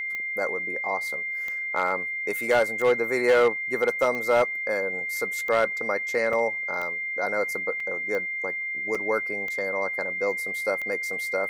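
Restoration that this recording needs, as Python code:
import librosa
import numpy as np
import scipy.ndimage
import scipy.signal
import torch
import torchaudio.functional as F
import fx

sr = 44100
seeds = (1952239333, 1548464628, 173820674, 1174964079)

y = fx.fix_declip(x, sr, threshold_db=-14.0)
y = fx.fix_declick_ar(y, sr, threshold=10.0)
y = fx.notch(y, sr, hz=2100.0, q=30.0)
y = fx.fix_interpolate(y, sr, at_s=(6.33, 7.8, 8.95), length_ms=3.4)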